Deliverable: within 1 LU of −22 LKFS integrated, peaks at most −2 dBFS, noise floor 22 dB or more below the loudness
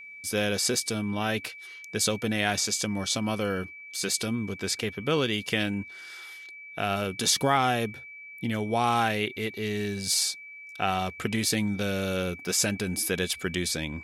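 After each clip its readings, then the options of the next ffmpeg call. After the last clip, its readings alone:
interfering tone 2,300 Hz; level of the tone −42 dBFS; integrated loudness −27.5 LKFS; sample peak −10.0 dBFS; target loudness −22.0 LKFS
→ -af "bandreject=frequency=2300:width=30"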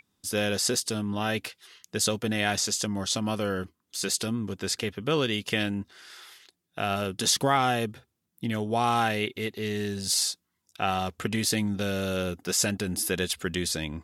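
interfering tone none found; integrated loudness −28.0 LKFS; sample peak −10.0 dBFS; target loudness −22.0 LKFS
→ -af "volume=6dB"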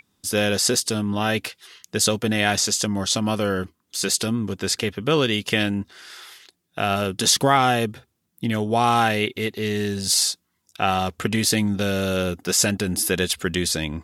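integrated loudness −22.0 LKFS; sample peak −4.0 dBFS; background noise floor −73 dBFS

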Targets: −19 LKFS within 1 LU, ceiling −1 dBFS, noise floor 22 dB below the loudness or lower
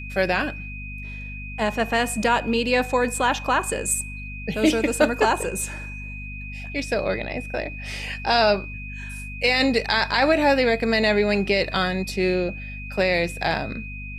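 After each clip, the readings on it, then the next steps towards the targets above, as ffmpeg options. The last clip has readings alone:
mains hum 50 Hz; hum harmonics up to 250 Hz; level of the hum −33 dBFS; interfering tone 2,500 Hz; level of the tone −36 dBFS; integrated loudness −22.5 LKFS; sample peak −6.0 dBFS; target loudness −19.0 LKFS
→ -af "bandreject=frequency=50:width_type=h:width=6,bandreject=frequency=100:width_type=h:width=6,bandreject=frequency=150:width_type=h:width=6,bandreject=frequency=200:width_type=h:width=6,bandreject=frequency=250:width_type=h:width=6"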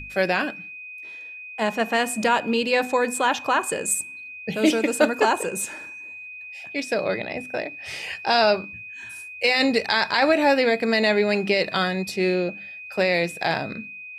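mains hum none found; interfering tone 2,500 Hz; level of the tone −36 dBFS
→ -af "bandreject=frequency=2500:width=30"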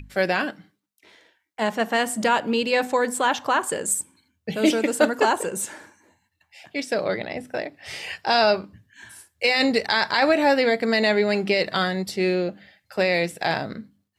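interfering tone none found; integrated loudness −22.5 LKFS; sample peak −7.0 dBFS; target loudness −19.0 LKFS
→ -af "volume=3.5dB"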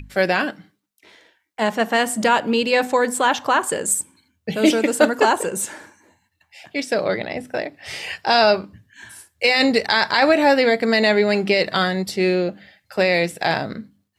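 integrated loudness −19.0 LKFS; sample peak −3.5 dBFS; background noise floor −71 dBFS

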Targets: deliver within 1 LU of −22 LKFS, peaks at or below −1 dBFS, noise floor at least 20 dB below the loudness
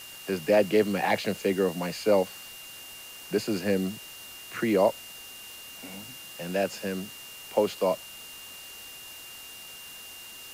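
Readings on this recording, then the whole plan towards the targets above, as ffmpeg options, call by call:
interfering tone 2,800 Hz; level of the tone −45 dBFS; background noise floor −44 dBFS; target noise floor −48 dBFS; integrated loudness −27.5 LKFS; sample peak −10.0 dBFS; target loudness −22.0 LKFS
→ -af "bandreject=frequency=2800:width=30"
-af "afftdn=noise_reduction=6:noise_floor=-44"
-af "volume=5.5dB"

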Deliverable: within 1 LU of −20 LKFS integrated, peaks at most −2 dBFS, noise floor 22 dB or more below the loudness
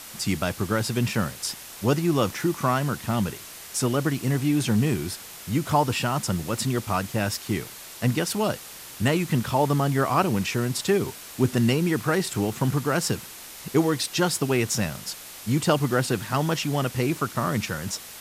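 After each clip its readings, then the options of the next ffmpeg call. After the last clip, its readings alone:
background noise floor −42 dBFS; target noise floor −47 dBFS; integrated loudness −25.0 LKFS; sample peak −8.0 dBFS; target loudness −20.0 LKFS
→ -af "afftdn=noise_reduction=6:noise_floor=-42"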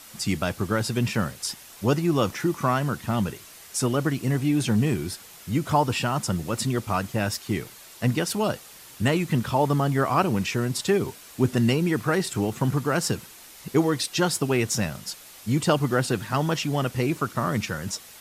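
background noise floor −47 dBFS; target noise floor −48 dBFS
→ -af "afftdn=noise_reduction=6:noise_floor=-47"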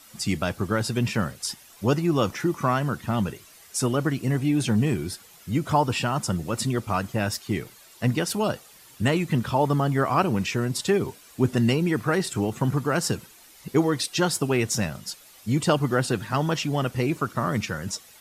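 background noise floor −51 dBFS; integrated loudness −25.5 LKFS; sample peak −8.0 dBFS; target loudness −20.0 LKFS
→ -af "volume=5.5dB"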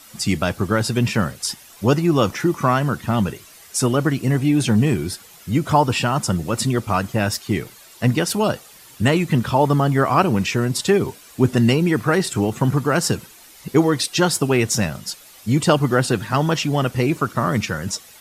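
integrated loudness −20.0 LKFS; sample peak −2.5 dBFS; background noise floor −45 dBFS

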